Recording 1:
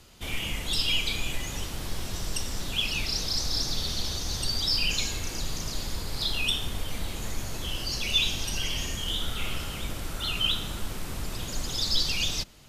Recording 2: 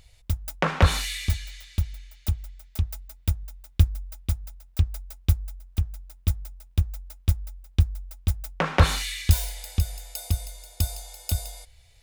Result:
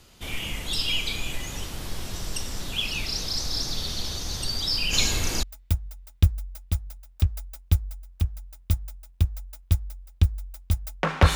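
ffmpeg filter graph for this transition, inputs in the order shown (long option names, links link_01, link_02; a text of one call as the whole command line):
ffmpeg -i cue0.wav -i cue1.wav -filter_complex "[0:a]asplit=3[link_01][link_02][link_03];[link_01]afade=type=out:start_time=4.92:duration=0.02[link_04];[link_02]acontrast=73,afade=type=in:start_time=4.92:duration=0.02,afade=type=out:start_time=5.43:duration=0.02[link_05];[link_03]afade=type=in:start_time=5.43:duration=0.02[link_06];[link_04][link_05][link_06]amix=inputs=3:normalize=0,apad=whole_dur=11.35,atrim=end=11.35,atrim=end=5.432[link_07];[1:a]atrim=start=2.998:end=8.92[link_08];[link_07][link_08]acrossfade=duration=0.004:curve1=hsin:curve2=hsin" out.wav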